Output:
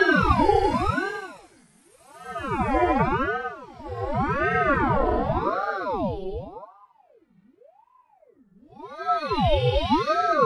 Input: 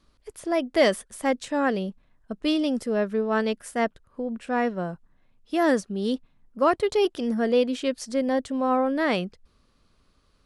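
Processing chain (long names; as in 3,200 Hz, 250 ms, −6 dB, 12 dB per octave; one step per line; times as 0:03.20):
harmonic-percussive split with one part muted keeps harmonic
extreme stretch with random phases 5.5×, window 0.25 s, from 0:00.76
ring modulator whose carrier an LFO sweeps 600 Hz, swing 70%, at 0.88 Hz
level +5 dB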